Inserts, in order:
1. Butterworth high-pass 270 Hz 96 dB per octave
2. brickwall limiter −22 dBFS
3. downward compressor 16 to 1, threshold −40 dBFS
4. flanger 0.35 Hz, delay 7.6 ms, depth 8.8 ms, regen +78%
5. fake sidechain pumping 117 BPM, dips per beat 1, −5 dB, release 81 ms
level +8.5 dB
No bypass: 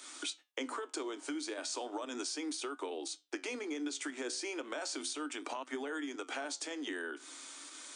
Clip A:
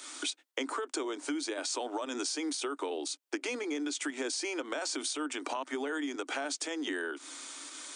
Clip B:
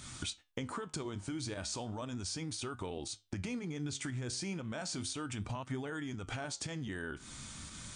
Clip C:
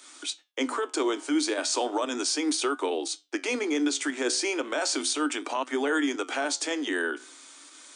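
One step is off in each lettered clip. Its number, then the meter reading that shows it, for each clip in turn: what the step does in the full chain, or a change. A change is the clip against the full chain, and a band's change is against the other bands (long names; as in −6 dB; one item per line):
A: 4, change in integrated loudness +4.5 LU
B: 1, 250 Hz band +3.0 dB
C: 3, average gain reduction 9.5 dB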